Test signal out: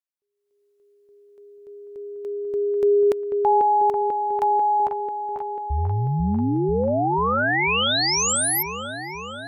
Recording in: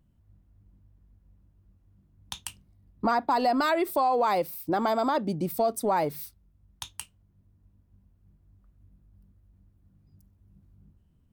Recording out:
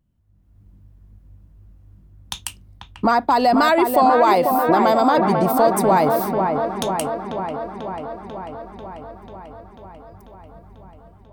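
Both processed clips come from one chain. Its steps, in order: level rider gain up to 13.5 dB; on a send: feedback echo behind a low-pass 492 ms, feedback 70%, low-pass 2.1 kHz, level -5 dB; on the sum: trim -3.5 dB

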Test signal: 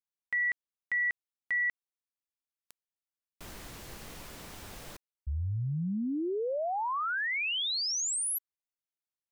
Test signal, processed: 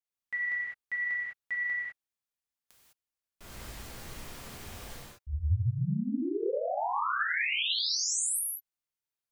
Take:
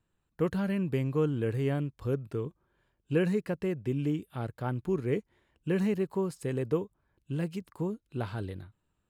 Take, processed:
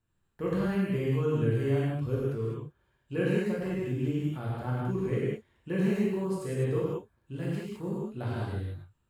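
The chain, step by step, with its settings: gated-style reverb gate 230 ms flat, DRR -7 dB; trim -6.5 dB

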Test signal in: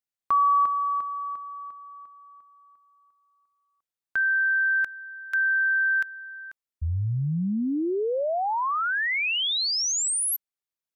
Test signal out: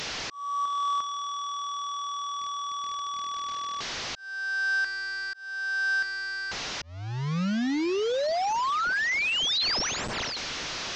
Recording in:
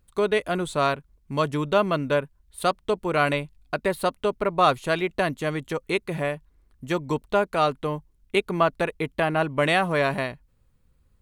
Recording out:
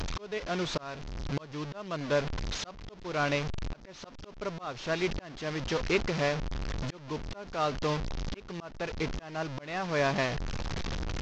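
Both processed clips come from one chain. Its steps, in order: one-bit delta coder 32 kbps, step -25 dBFS; slow attack 593 ms; trim -2 dB

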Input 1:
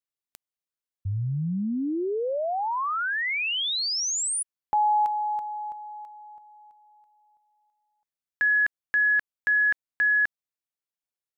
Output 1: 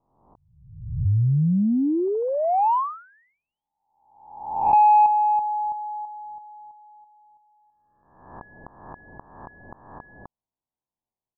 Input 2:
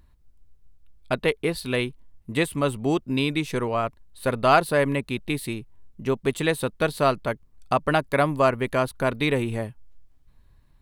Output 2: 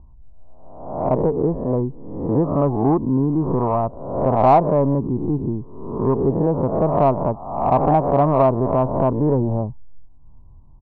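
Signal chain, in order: reverse spectral sustain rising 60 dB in 0.86 s; steep low-pass 1 kHz 48 dB/octave; comb 1 ms, depth 37%; in parallel at -4 dB: saturation -17 dBFS; on the sum: trim +2 dB

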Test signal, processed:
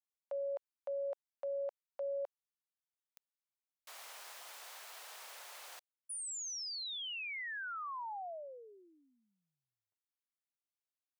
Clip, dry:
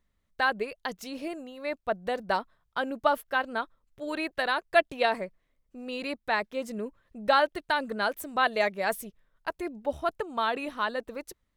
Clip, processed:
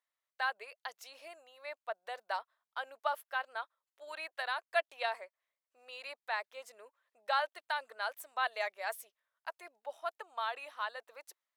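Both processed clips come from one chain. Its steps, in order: high-pass 640 Hz 24 dB/octave; trim -8 dB

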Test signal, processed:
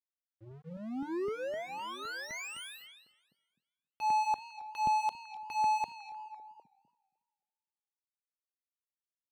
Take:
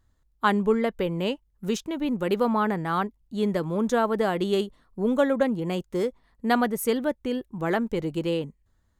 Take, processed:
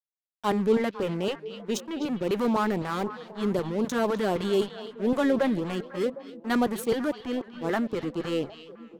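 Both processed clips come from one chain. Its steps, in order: hum notches 50/100/150 Hz; level-controlled noise filter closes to 1.4 kHz, open at -21 dBFS; high-pass 110 Hz 6 dB/octave; dynamic bell 350 Hz, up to +4 dB, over -37 dBFS, Q 0.92; transient shaper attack -4 dB, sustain +5 dB; crossover distortion -34.5 dBFS; LFO notch saw up 3.9 Hz 200–2400 Hz; on a send: repeats whose band climbs or falls 252 ms, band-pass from 3.5 kHz, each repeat -1.4 oct, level -8.5 dB; on the sum: modulated delay 276 ms, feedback 31%, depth 141 cents, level -22 dB

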